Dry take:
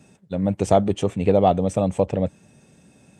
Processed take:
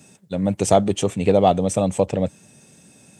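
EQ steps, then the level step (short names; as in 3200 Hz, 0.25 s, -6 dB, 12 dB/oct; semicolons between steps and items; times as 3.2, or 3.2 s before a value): HPF 82 Hz; high shelf 3900 Hz +11.5 dB; +1.0 dB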